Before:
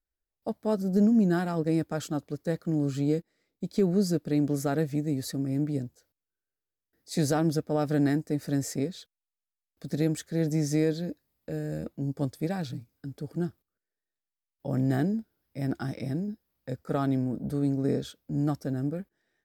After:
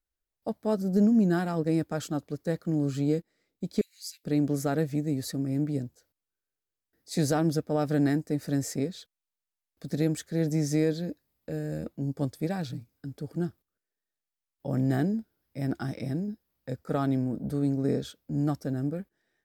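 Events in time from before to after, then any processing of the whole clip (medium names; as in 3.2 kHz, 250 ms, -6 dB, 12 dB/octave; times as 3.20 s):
3.81–4.24 s: Chebyshev high-pass 2.1 kHz, order 5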